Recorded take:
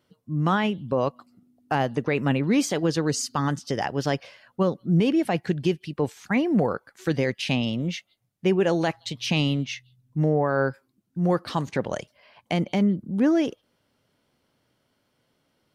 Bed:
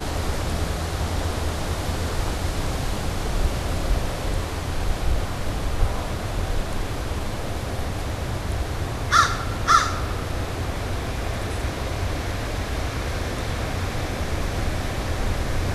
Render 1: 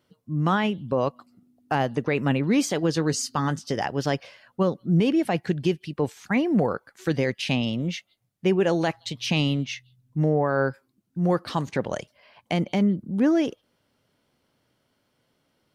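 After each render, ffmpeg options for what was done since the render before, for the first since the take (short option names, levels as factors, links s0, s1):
-filter_complex "[0:a]asettb=1/sr,asplit=3[s0][s1][s2];[s0]atrim=end=2.944[s3];[s1]atrim=start=2.94:end=3.76,asetpts=PTS-STARTPTS,afade=t=in:d=0.004:c=qsin,afade=t=out:st=0.816:d=0.004:c=qsin,asplit=2[s4][s5];[s5]adelay=19,volume=0.2[s6];[s4][s6]amix=inputs=2:normalize=0,atrim=end_sample=36162[s7];[s2]atrim=start=3.756[s8];[s3][s7]acrossfade=d=0.004:c1=hsin:c2=qsin[s9];[s9][s8]acrossfade=d=0.004:c1=qsin:c2=hsin"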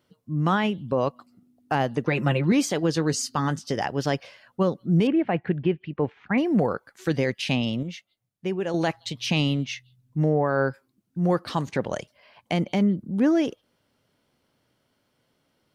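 -filter_complex "[0:a]asettb=1/sr,asplit=3[s0][s1][s2];[s0]atrim=end=2.074[s3];[s1]atrim=start=2.07:end=2.52,asetpts=PTS-STARTPTS,afade=t=in:d=0.004:c=qsin,afade=t=out:st=0.446:d=0.004:c=qsin,aecho=1:1:5.7:0.71,atrim=end_sample=19845[s4];[s2]atrim=start=2.516[s5];[s3][s4]acrossfade=d=0.004:c1=hsin:c2=qsin[s6];[s6][s5]acrossfade=d=0.004:c1=qsin:c2=hsin,asettb=1/sr,asplit=3[s7][s8][s9];[s7]atrim=end=5.074[s10];[s8]atrim=start=5.07:end=6.38,asetpts=PTS-STARTPTS,afade=t=in:d=0.004:c=qsin,afade=t=out:st=1.306:d=0.004:c=qsin,lowpass=f=2600:w=0.5412,lowpass=f=2600:w=1.3066[s11];[s9]atrim=start=6.376[s12];[s10][s11]acrossfade=d=0.004:c1=hsin:c2=qsin[s13];[s13][s12]acrossfade=d=0.004:c1=qsin:c2=hsin,asplit=3[s14][s15][s16];[s14]atrim=end=7.832[s17];[s15]atrim=start=7.828:end=8.742,asetpts=PTS-STARTPTS,volume=0.473[s18];[s16]atrim=start=8.738[s19];[s17][s18]acrossfade=d=0.004:c1=hsin:c2=hsin[s20];[s20][s19]acrossfade=d=0.004:c1=hsin:c2=hsin"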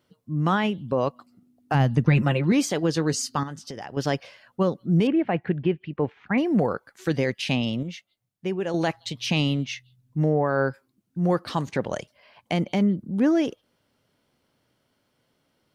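-filter_complex "[0:a]asplit=3[s0][s1][s2];[s0]afade=t=out:st=1.73:d=0.02[s3];[s1]asubboost=boost=10:cutoff=170,afade=t=in:st=1.73:d=0.02,afade=t=out:st=2.21:d=0.02[s4];[s2]afade=t=in:st=2.21:d=0.02[s5];[s3][s4][s5]amix=inputs=3:normalize=0,asettb=1/sr,asplit=3[s6][s7][s8];[s6]atrim=end=3.434[s9];[s7]atrim=start=3.43:end=3.97,asetpts=PTS-STARTPTS,afade=t=in:d=0.004:c=qsin,afade=t=out:st=0.536:d=0.004:c=qsin,acompressor=threshold=0.0178:ratio=3:attack=3.2:release=140:knee=1:detection=peak[s10];[s8]atrim=start=3.966[s11];[s9][s10]acrossfade=d=0.004:c1=hsin:c2=qsin[s12];[s12][s11]acrossfade=d=0.004:c1=qsin:c2=hsin"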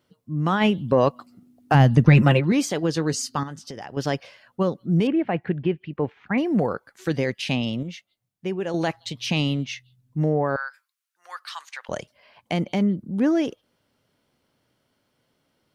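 -filter_complex "[0:a]asplit=3[s0][s1][s2];[s0]afade=t=out:st=0.6:d=0.02[s3];[s1]acontrast=49,afade=t=in:st=0.6:d=0.02,afade=t=out:st=2.39:d=0.02[s4];[s2]afade=t=in:st=2.39:d=0.02[s5];[s3][s4][s5]amix=inputs=3:normalize=0,asettb=1/sr,asplit=3[s6][s7][s8];[s6]atrim=end=10.564[s9];[s7]atrim=start=10.56:end=11.89,asetpts=PTS-STARTPTS,afade=t=in:d=0.004:c=qsin,afade=t=out:st=1.326:d=0.004:c=qsin,highpass=f=1200:w=0.5412,highpass=f=1200:w=1.3066[s10];[s8]atrim=start=11.886[s11];[s9][s10]acrossfade=d=0.004:c1=hsin:c2=qsin[s12];[s12][s11]acrossfade=d=0.004:c1=qsin:c2=hsin"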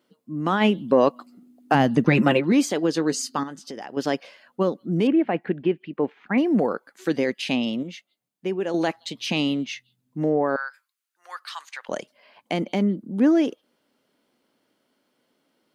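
-af "lowshelf=f=160:t=q:w=1.5:g=-14,bandreject=f=5600:w=20"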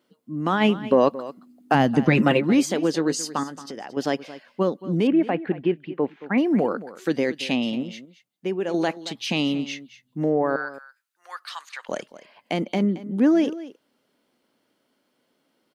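-af "aecho=1:1:224:0.158"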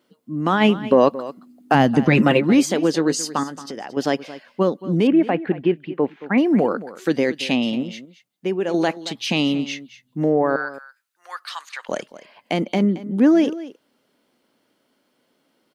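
-af "volume=1.5,alimiter=limit=0.708:level=0:latency=1"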